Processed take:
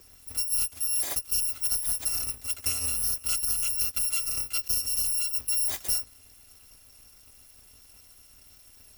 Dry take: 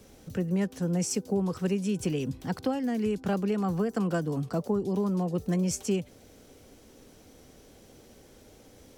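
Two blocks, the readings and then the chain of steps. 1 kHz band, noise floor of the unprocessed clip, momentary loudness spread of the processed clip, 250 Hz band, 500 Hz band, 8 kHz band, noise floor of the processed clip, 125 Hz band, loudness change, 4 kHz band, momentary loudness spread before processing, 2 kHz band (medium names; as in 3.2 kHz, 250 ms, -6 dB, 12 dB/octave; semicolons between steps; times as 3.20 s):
-11.0 dB, -55 dBFS, 4 LU, -27.5 dB, -23.0 dB, +13.0 dB, -55 dBFS, -17.5 dB, +4.0 dB, +11.5 dB, 4 LU, +1.0 dB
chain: bit-reversed sample order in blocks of 256 samples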